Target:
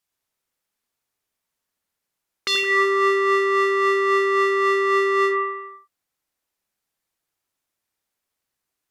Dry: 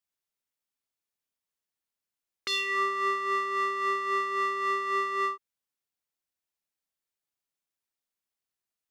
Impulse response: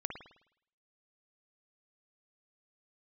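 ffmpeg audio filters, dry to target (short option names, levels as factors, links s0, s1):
-filter_complex "[1:a]atrim=start_sample=2205,afade=t=out:st=0.38:d=0.01,atrim=end_sample=17199,asetrate=29106,aresample=44100[s0];[0:a][s0]afir=irnorm=-1:irlink=0,volume=2.37"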